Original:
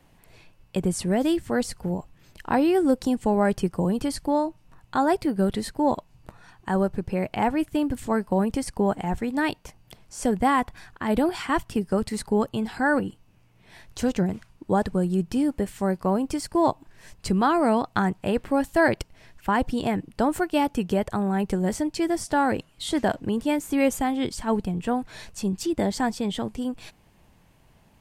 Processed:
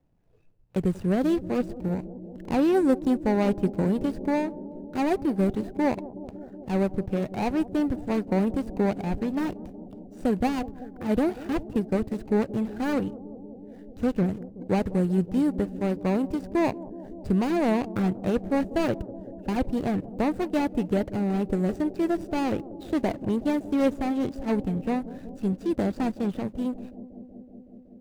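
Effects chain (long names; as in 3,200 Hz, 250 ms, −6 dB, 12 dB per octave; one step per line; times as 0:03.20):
running median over 41 samples
noise reduction from a noise print of the clip's start 10 dB
bucket-brigade delay 187 ms, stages 1,024, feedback 83%, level −17 dB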